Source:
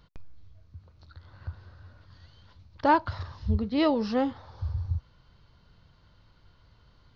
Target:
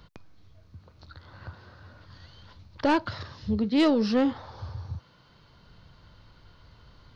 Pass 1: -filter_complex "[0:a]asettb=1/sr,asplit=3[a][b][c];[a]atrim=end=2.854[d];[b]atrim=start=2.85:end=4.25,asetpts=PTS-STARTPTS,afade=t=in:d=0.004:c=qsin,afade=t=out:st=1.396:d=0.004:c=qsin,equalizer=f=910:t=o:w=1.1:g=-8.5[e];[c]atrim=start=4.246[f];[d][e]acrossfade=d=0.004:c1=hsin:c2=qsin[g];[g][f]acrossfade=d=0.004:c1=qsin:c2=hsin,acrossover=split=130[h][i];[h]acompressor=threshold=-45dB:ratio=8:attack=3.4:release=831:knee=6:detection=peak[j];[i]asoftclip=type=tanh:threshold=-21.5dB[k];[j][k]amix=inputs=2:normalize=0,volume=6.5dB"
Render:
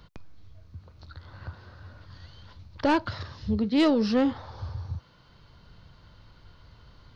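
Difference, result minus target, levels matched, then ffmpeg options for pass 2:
compressor: peak gain reduction -7.5 dB
-filter_complex "[0:a]asettb=1/sr,asplit=3[a][b][c];[a]atrim=end=2.854[d];[b]atrim=start=2.85:end=4.25,asetpts=PTS-STARTPTS,afade=t=in:d=0.004:c=qsin,afade=t=out:st=1.396:d=0.004:c=qsin,equalizer=f=910:t=o:w=1.1:g=-8.5[e];[c]atrim=start=4.246[f];[d][e]acrossfade=d=0.004:c1=hsin:c2=qsin[g];[g][f]acrossfade=d=0.004:c1=qsin:c2=hsin,acrossover=split=130[h][i];[h]acompressor=threshold=-53.5dB:ratio=8:attack=3.4:release=831:knee=6:detection=peak[j];[i]asoftclip=type=tanh:threshold=-21.5dB[k];[j][k]amix=inputs=2:normalize=0,volume=6.5dB"

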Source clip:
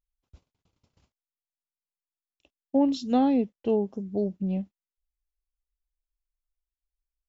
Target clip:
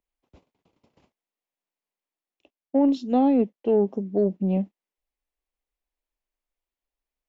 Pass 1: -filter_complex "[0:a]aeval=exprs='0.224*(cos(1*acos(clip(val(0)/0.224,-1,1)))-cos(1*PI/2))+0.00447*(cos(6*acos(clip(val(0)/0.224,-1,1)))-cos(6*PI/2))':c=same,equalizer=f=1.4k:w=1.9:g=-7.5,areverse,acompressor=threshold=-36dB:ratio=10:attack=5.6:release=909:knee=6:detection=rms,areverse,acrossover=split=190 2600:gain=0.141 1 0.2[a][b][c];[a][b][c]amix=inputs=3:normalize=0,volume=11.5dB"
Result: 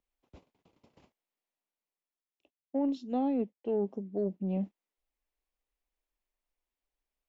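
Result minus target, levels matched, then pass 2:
compressor: peak gain reduction +10.5 dB
-filter_complex "[0:a]aeval=exprs='0.224*(cos(1*acos(clip(val(0)/0.224,-1,1)))-cos(1*PI/2))+0.00447*(cos(6*acos(clip(val(0)/0.224,-1,1)))-cos(6*PI/2))':c=same,equalizer=f=1.4k:w=1.9:g=-7.5,areverse,acompressor=threshold=-24.5dB:ratio=10:attack=5.6:release=909:knee=6:detection=rms,areverse,acrossover=split=190 2600:gain=0.141 1 0.2[a][b][c];[a][b][c]amix=inputs=3:normalize=0,volume=11.5dB"

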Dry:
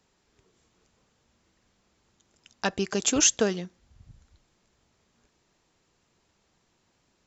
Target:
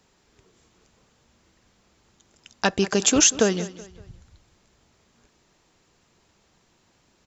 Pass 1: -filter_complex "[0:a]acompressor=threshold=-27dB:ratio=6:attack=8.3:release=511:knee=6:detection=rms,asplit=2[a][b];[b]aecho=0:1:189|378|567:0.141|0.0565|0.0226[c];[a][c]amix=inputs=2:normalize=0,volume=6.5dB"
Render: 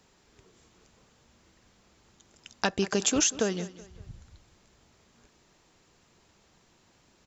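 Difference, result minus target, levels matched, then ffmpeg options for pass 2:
compressor: peak gain reduction +9 dB
-filter_complex "[0:a]acompressor=threshold=-16dB:ratio=6:attack=8.3:release=511:knee=6:detection=rms,asplit=2[a][b];[b]aecho=0:1:189|378|567:0.141|0.0565|0.0226[c];[a][c]amix=inputs=2:normalize=0,volume=6.5dB"

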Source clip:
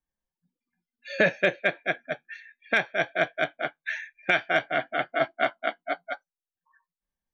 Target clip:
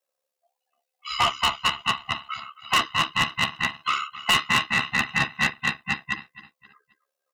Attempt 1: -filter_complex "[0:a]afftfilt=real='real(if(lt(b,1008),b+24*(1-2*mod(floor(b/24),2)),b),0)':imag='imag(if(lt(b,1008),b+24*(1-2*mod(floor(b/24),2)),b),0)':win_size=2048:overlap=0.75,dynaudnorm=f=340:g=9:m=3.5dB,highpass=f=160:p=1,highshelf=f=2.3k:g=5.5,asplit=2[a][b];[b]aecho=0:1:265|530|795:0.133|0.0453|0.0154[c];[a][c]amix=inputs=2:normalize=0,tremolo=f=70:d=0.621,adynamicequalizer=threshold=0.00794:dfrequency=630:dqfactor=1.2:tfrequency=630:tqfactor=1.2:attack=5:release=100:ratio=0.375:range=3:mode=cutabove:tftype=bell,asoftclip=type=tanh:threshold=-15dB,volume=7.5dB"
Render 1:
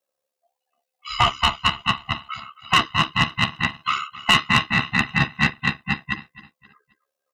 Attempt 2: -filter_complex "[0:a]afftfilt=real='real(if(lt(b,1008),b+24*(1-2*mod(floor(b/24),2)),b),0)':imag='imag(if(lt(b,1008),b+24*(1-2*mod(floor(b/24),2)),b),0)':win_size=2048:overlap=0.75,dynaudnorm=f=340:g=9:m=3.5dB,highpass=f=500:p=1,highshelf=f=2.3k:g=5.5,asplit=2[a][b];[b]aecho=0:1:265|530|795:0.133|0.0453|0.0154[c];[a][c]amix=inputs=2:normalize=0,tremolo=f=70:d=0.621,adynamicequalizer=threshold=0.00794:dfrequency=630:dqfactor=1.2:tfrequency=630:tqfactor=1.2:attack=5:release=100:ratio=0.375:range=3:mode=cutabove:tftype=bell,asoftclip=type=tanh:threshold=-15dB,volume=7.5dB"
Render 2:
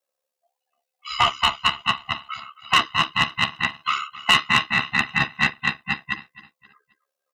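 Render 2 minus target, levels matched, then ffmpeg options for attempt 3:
soft clip: distortion -6 dB
-filter_complex "[0:a]afftfilt=real='real(if(lt(b,1008),b+24*(1-2*mod(floor(b/24),2)),b),0)':imag='imag(if(lt(b,1008),b+24*(1-2*mod(floor(b/24),2)),b),0)':win_size=2048:overlap=0.75,dynaudnorm=f=340:g=9:m=3.5dB,highpass=f=500:p=1,highshelf=f=2.3k:g=5.5,asplit=2[a][b];[b]aecho=0:1:265|530|795:0.133|0.0453|0.0154[c];[a][c]amix=inputs=2:normalize=0,tremolo=f=70:d=0.621,adynamicequalizer=threshold=0.00794:dfrequency=630:dqfactor=1.2:tfrequency=630:tqfactor=1.2:attack=5:release=100:ratio=0.375:range=3:mode=cutabove:tftype=bell,asoftclip=type=tanh:threshold=-22dB,volume=7.5dB"

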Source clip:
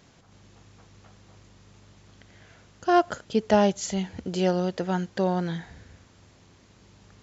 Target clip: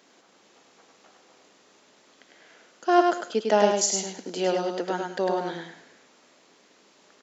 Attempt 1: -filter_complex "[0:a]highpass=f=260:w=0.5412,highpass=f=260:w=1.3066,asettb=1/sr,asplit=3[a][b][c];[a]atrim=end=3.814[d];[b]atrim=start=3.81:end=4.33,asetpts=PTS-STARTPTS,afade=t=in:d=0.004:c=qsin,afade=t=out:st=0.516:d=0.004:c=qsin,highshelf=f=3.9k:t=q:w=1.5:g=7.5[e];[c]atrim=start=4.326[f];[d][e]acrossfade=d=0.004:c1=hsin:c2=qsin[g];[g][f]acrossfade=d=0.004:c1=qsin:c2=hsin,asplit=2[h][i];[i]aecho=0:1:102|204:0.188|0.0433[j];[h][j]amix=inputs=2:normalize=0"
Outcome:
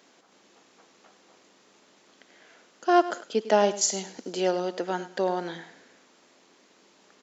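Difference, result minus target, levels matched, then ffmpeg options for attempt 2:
echo-to-direct -11 dB
-filter_complex "[0:a]highpass=f=260:w=0.5412,highpass=f=260:w=1.3066,asettb=1/sr,asplit=3[a][b][c];[a]atrim=end=3.814[d];[b]atrim=start=3.81:end=4.33,asetpts=PTS-STARTPTS,afade=t=in:d=0.004:c=qsin,afade=t=out:st=0.516:d=0.004:c=qsin,highshelf=f=3.9k:t=q:w=1.5:g=7.5[e];[c]atrim=start=4.326[f];[d][e]acrossfade=d=0.004:c1=hsin:c2=qsin[g];[g][f]acrossfade=d=0.004:c1=qsin:c2=hsin,asplit=2[h][i];[i]aecho=0:1:102|204|306:0.668|0.154|0.0354[j];[h][j]amix=inputs=2:normalize=0"

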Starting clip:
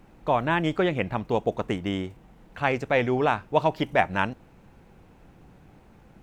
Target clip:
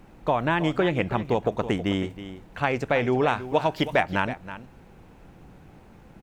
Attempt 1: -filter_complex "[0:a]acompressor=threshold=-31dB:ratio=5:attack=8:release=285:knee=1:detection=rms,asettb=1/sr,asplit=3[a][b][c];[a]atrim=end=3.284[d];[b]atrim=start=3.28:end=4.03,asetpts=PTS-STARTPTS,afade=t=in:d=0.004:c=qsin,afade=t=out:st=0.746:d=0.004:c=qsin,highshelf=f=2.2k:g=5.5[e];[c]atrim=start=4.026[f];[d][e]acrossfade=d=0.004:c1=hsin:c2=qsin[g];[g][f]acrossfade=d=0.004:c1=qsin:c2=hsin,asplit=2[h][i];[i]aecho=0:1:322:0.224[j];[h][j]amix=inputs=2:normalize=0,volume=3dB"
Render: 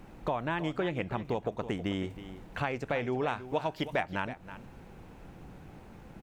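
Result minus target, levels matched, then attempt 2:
compressor: peak gain reduction +9 dB
-filter_complex "[0:a]acompressor=threshold=-20dB:ratio=5:attack=8:release=285:knee=1:detection=rms,asettb=1/sr,asplit=3[a][b][c];[a]atrim=end=3.284[d];[b]atrim=start=3.28:end=4.03,asetpts=PTS-STARTPTS,afade=t=in:d=0.004:c=qsin,afade=t=out:st=0.746:d=0.004:c=qsin,highshelf=f=2.2k:g=5.5[e];[c]atrim=start=4.026[f];[d][e]acrossfade=d=0.004:c1=hsin:c2=qsin[g];[g][f]acrossfade=d=0.004:c1=qsin:c2=hsin,asplit=2[h][i];[i]aecho=0:1:322:0.224[j];[h][j]amix=inputs=2:normalize=0,volume=3dB"

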